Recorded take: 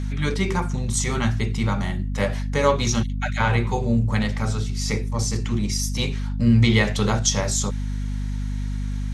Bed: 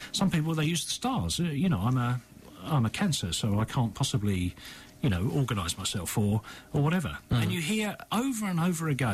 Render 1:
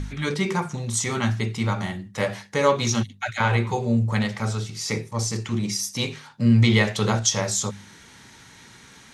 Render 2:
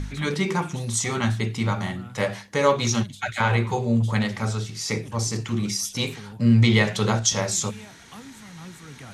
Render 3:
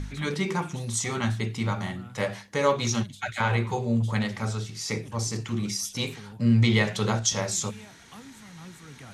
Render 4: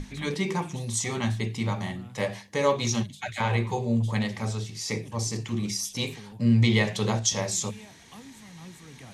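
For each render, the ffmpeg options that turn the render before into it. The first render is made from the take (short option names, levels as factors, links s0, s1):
-af "bandreject=f=50:t=h:w=4,bandreject=f=100:t=h:w=4,bandreject=f=150:t=h:w=4,bandreject=f=200:t=h:w=4,bandreject=f=250:t=h:w=4"
-filter_complex "[1:a]volume=0.188[s0];[0:a][s0]amix=inputs=2:normalize=0"
-af "volume=0.668"
-af "equalizer=f=1400:t=o:w=0.26:g=-11,bandreject=f=50:t=h:w=6,bandreject=f=100:t=h:w=6,bandreject=f=150:t=h:w=6"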